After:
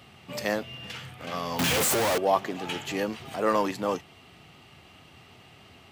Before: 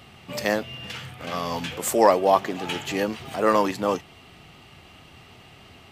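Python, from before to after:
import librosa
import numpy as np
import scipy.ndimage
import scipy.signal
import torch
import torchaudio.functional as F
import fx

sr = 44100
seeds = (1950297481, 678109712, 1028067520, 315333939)

p1 = fx.clip_1bit(x, sr, at=(1.59, 2.18))
p2 = scipy.signal.sosfilt(scipy.signal.butter(2, 66.0, 'highpass', fs=sr, output='sos'), p1)
p3 = np.clip(p2, -10.0 ** (-22.5 / 20.0), 10.0 ** (-22.5 / 20.0))
p4 = p2 + (p3 * 10.0 ** (-11.5 / 20.0))
y = p4 * 10.0 ** (-5.5 / 20.0)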